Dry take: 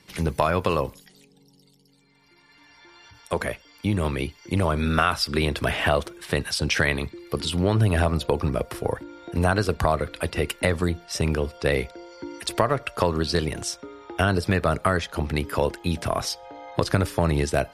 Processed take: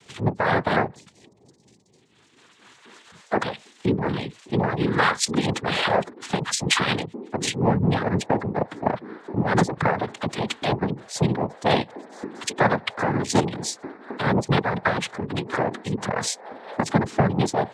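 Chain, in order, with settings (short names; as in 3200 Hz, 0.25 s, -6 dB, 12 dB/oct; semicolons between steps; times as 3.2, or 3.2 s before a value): spectral gate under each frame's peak -20 dB strong; noise vocoder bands 6; tremolo triangle 4.2 Hz, depth 60%; gain +5 dB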